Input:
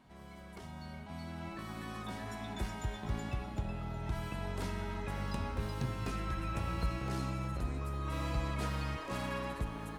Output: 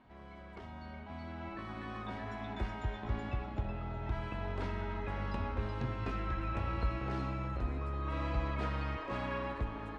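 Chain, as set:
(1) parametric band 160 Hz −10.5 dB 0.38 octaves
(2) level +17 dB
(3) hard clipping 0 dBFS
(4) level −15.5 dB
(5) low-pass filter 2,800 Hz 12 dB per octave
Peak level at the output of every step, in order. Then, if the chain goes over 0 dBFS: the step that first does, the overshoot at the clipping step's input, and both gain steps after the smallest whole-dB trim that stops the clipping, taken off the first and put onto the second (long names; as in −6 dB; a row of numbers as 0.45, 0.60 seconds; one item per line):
−23.0, −6.0, −6.0, −21.5, −22.0 dBFS
no step passes full scale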